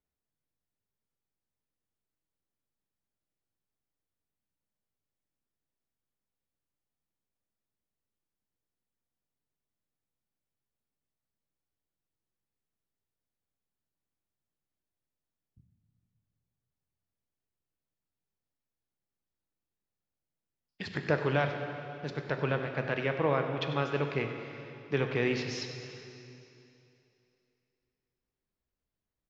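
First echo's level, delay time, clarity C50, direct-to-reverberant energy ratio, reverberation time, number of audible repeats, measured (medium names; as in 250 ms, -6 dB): -14.5 dB, 96 ms, 5.5 dB, 4.5 dB, 2.9 s, 1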